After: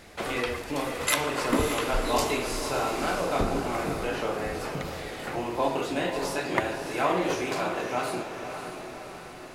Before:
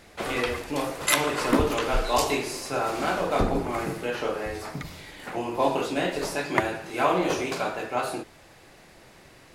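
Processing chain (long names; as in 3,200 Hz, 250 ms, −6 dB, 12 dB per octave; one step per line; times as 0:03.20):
in parallel at +1 dB: downward compressor, threshold −36 dBFS, peak gain reduction 18.5 dB
on the sum: feedback delay with all-pass diffusion 578 ms, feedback 55%, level −7.5 dB
level −4.5 dB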